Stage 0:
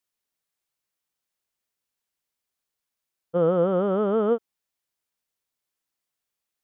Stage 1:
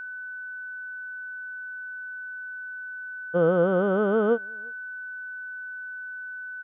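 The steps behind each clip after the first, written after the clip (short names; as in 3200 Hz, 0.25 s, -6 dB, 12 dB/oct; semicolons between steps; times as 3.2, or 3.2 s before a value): outdoor echo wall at 60 m, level -30 dB; whine 1500 Hz -34 dBFS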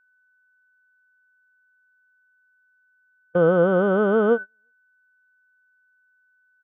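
gate -28 dBFS, range -31 dB; gain +3.5 dB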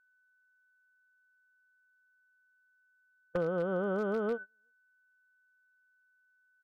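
compressor 16:1, threshold -21 dBFS, peak gain reduction 9 dB; wavefolder -17 dBFS; gain -7 dB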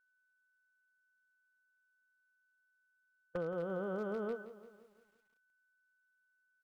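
lo-fi delay 0.171 s, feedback 55%, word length 10-bit, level -13.5 dB; gain -6.5 dB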